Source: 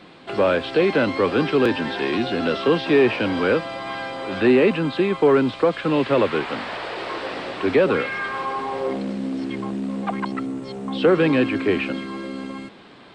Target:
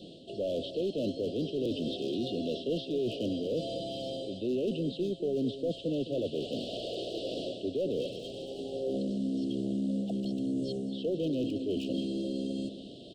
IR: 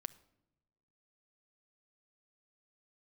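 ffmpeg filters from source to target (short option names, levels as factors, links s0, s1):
-filter_complex "[0:a]areverse,acompressor=threshold=0.0316:ratio=4,areverse,asoftclip=type=hard:threshold=0.0501,asuperstop=centerf=1400:order=20:qfactor=0.64,asplit=2[s0][s1];[s1]adelay=209.9,volume=0.251,highshelf=f=4000:g=-4.72[s2];[s0][s2]amix=inputs=2:normalize=0"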